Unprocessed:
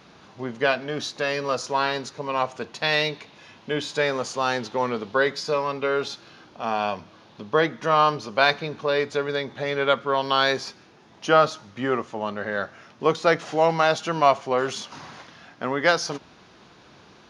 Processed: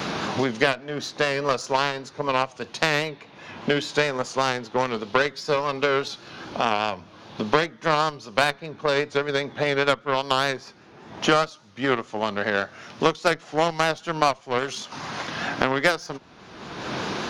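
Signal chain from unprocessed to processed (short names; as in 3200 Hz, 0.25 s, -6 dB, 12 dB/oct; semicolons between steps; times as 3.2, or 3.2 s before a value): added harmonics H 6 -42 dB, 7 -20 dB, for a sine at -3 dBFS; vibrato 5 Hz 63 cents; three-band squash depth 100%; gain +3 dB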